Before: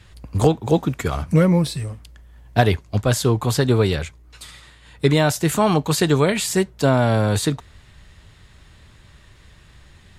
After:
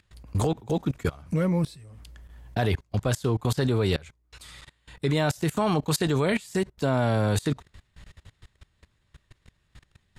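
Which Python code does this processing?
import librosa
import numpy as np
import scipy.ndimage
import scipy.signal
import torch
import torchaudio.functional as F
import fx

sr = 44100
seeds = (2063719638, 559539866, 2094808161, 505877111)

y = fx.level_steps(x, sr, step_db=23)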